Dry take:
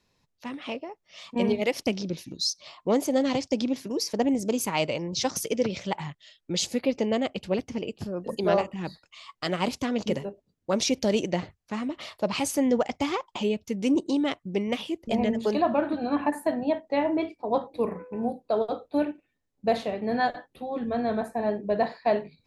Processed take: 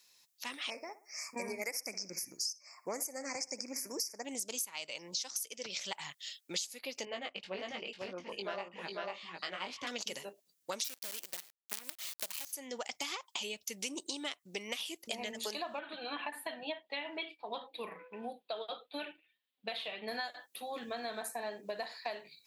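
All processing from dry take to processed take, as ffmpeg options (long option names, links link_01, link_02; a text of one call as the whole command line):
ffmpeg -i in.wav -filter_complex "[0:a]asettb=1/sr,asplit=3[link_01][link_02][link_03];[link_01]atrim=end=0.704[link_04];[link_02]atrim=start=0.7:end=4.25,asetpts=PTS-STARTPTS,afade=type=in:duration=0.004:curve=qsin,afade=type=out:start_time=3.546:duration=0.004:curve=qsin,asuperstop=centerf=3400:order=12:qfactor=1.4,asplit=2[link_05][link_06];[link_06]adelay=61,lowpass=frequency=2500:poles=1,volume=-15dB,asplit=2[link_07][link_08];[link_08]adelay=61,lowpass=frequency=2500:poles=1,volume=0.44,asplit=2[link_09][link_10];[link_10]adelay=61,lowpass=frequency=2500:poles=1,volume=0.44,asplit=2[link_11][link_12];[link_12]adelay=61,lowpass=frequency=2500:poles=1,volume=0.44[link_13];[link_05][link_07][link_09][link_11][link_13]amix=inputs=5:normalize=0,atrim=end_sample=156555[link_14];[link_03]atrim=start=4.246[link_15];[link_04][link_14]acrossfade=duration=0.004:curve1=hsin:curve2=qsin[link_16];[link_16][link_15]acrossfade=duration=0.004:curve1=qsin:curve2=hsin,asettb=1/sr,asplit=3[link_17][link_18][link_19];[link_17]atrim=end=7.054[link_20];[link_18]atrim=start=7.05:end=9.87,asetpts=PTS-STARTPTS,afade=type=in:duration=0.004:curve=qsin,afade=type=out:start_time=2.816:duration=0.004:curve=qsin,flanger=delay=16:depth=4.8:speed=1,lowpass=2500,aecho=1:1:496:0.631,atrim=end_sample=124362[link_21];[link_19]atrim=start=9.866[link_22];[link_20][link_21]acrossfade=duration=0.004:curve1=hsin:curve2=qsin[link_23];[link_23][link_22]acrossfade=duration=0.004:curve1=qsin:curve2=hsin,asettb=1/sr,asplit=3[link_24][link_25][link_26];[link_24]atrim=end=10.844[link_27];[link_25]atrim=start=10.84:end=12.53,asetpts=PTS-STARTPTS,afade=type=in:duration=0.004:curve=qsin,afade=type=out:start_time=1.686:duration=0.004:curve=qsin,lowpass=frequency=5200:width=0.5412,lowpass=frequency=5200:width=1.3066,acrusher=bits=5:dc=4:mix=0:aa=0.000001[link_28];[link_26]atrim=start=12.526[link_29];[link_27][link_28]acrossfade=duration=0.004:curve1=hsin:curve2=qsin[link_30];[link_30][link_29]acrossfade=duration=0.004:curve1=qsin:curve2=hsin,asettb=1/sr,asplit=3[link_31][link_32][link_33];[link_31]atrim=end=15.794[link_34];[link_32]atrim=start=15.79:end=20.08,asetpts=PTS-STARTPTS,afade=type=in:duration=0.004:curve=qsin,afade=type=out:start_time=4.286:duration=0.004:curve=qsin,highshelf=frequency=4600:width_type=q:width=3:gain=-11.5,flanger=delay=3.8:depth=2.6:regen=44:speed=1.6:shape=sinusoidal[link_35];[link_33]atrim=start=20.076[link_36];[link_34][link_35]acrossfade=duration=0.004:curve1=hsin:curve2=qsin[link_37];[link_37][link_36]acrossfade=duration=0.004:curve1=qsin:curve2=hsin,aderivative,acompressor=threshold=-49dB:ratio=12,volume=13.5dB" out.wav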